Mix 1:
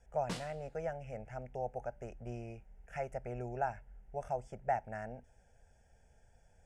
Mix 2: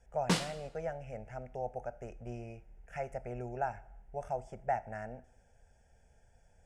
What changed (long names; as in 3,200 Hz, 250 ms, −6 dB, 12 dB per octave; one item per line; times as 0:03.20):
background +10.5 dB
reverb: on, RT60 0.75 s